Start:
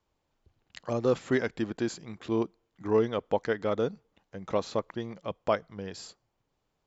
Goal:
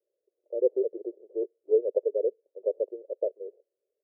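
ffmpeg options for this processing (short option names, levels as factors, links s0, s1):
-af "atempo=1.7,asuperpass=centerf=470:order=8:qfactor=2.1,volume=1.58"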